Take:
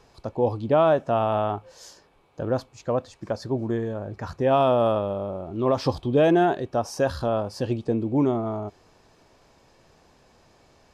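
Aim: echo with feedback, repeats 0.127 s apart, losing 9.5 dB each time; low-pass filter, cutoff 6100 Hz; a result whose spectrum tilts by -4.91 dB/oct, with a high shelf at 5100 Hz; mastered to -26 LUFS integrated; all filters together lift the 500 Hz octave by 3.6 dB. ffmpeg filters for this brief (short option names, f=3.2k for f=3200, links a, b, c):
-af "lowpass=6.1k,equalizer=f=500:t=o:g=4.5,highshelf=f=5.1k:g=5,aecho=1:1:127|254|381|508:0.335|0.111|0.0365|0.012,volume=-4.5dB"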